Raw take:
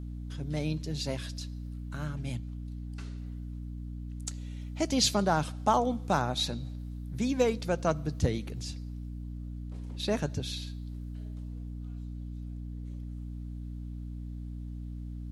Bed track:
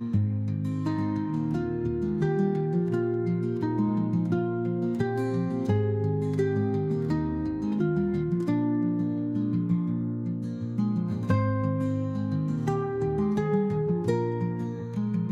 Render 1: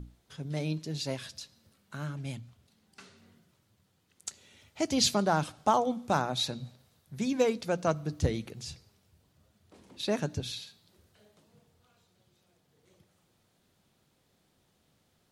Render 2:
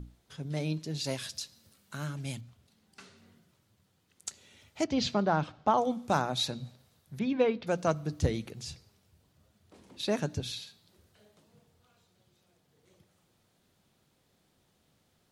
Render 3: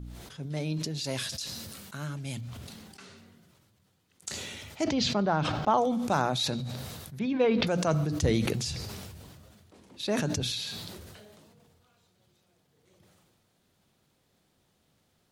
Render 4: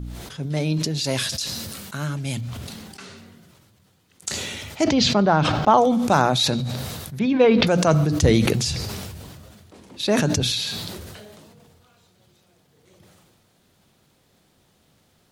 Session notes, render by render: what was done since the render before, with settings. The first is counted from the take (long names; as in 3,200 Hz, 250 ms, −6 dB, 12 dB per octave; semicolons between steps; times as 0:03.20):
mains-hum notches 60/120/180/240/300 Hz
0:01.04–0:02.41: high-shelf EQ 3,700 Hz +8 dB; 0:04.84–0:05.78: high-frequency loss of the air 190 metres; 0:07.19–0:07.67: low-pass filter 3,600 Hz 24 dB per octave
level that may fall only so fast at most 26 dB per second
level +9 dB